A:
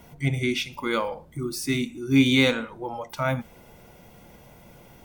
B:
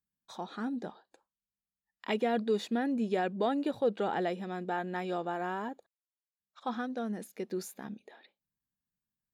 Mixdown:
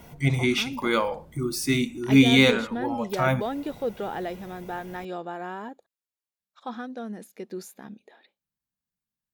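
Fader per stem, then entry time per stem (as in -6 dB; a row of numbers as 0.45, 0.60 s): +2.0, 0.0 dB; 0.00, 0.00 s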